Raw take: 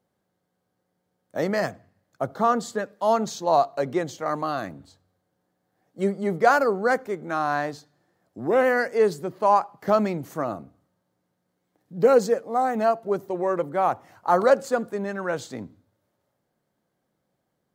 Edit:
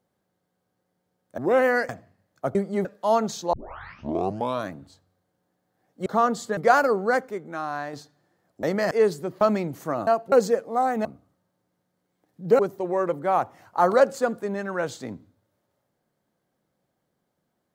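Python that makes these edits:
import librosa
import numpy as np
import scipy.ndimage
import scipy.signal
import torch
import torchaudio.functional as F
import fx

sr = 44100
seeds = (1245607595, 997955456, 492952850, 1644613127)

y = fx.edit(x, sr, fx.swap(start_s=1.38, length_s=0.28, other_s=8.4, other_length_s=0.51),
    fx.swap(start_s=2.32, length_s=0.51, other_s=6.04, other_length_s=0.3),
    fx.tape_start(start_s=3.51, length_s=1.17),
    fx.fade_out_to(start_s=6.84, length_s=0.86, curve='qua', floor_db=-6.5),
    fx.cut(start_s=9.41, length_s=0.5),
    fx.swap(start_s=10.57, length_s=1.54, other_s=12.84, other_length_s=0.25), tone=tone)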